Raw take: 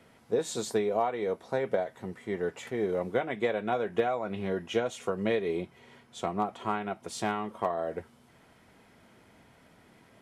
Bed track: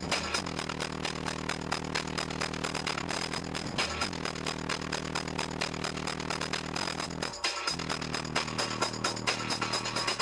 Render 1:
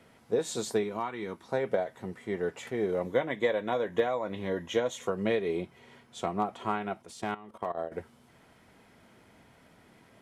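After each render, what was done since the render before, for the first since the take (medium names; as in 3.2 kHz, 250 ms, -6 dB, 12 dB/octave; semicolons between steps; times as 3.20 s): 0.83–1.49 s: high-order bell 570 Hz -11.5 dB 1 oct; 3.05–5.07 s: rippled EQ curve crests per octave 1.1, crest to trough 7 dB; 7.02–7.92 s: level held to a coarse grid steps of 16 dB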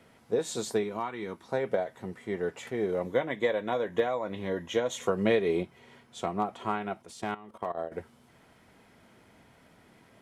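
4.90–5.63 s: gain +3.5 dB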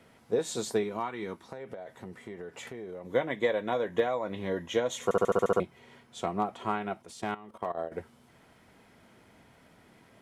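1.42–3.13 s: compression 12:1, threshold -37 dBFS; 5.04 s: stutter in place 0.07 s, 8 plays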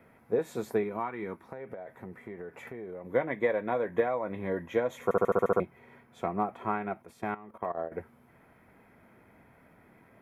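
high-order bell 5.6 kHz -15 dB; band-stop 2.9 kHz, Q 6.6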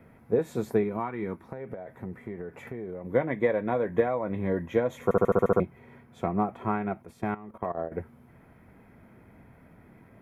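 bass shelf 280 Hz +10.5 dB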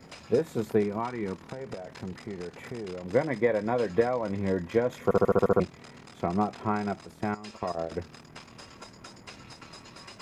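add bed track -16.5 dB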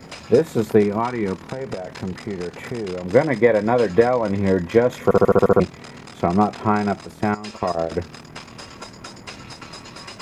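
trim +9.5 dB; peak limiter -2 dBFS, peak gain reduction 2 dB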